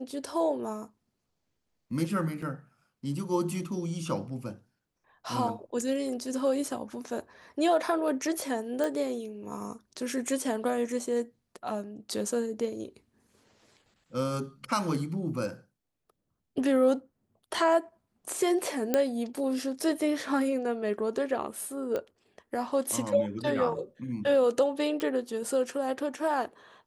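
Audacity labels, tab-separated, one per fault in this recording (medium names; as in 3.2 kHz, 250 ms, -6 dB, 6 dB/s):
2.420000	2.420000	dropout 4.2 ms
8.840000	8.840000	pop
18.940000	18.940000	pop -11 dBFS
21.960000	21.960000	pop -20 dBFS
25.000000	25.000000	pop -19 dBFS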